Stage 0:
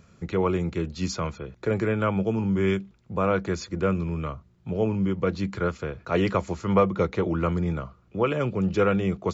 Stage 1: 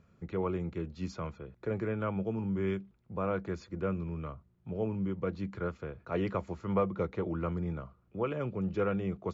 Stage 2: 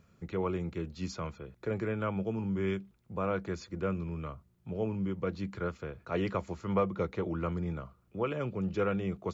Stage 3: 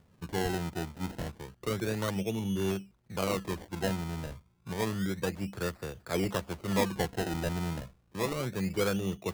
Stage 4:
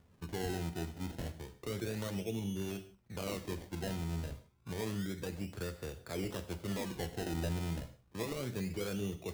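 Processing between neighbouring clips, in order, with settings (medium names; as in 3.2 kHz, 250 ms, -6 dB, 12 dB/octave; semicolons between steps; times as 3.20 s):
low-pass 1.9 kHz 6 dB/octave; trim -8.5 dB
treble shelf 3.1 kHz +8.5 dB
decimation with a swept rate 27×, swing 100% 0.3 Hz; trim +1 dB
peak limiter -26.5 dBFS, peak gain reduction 8.5 dB; dynamic bell 1.1 kHz, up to -6 dB, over -52 dBFS, Q 0.97; gated-style reverb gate 190 ms falling, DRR 8.5 dB; trim -3 dB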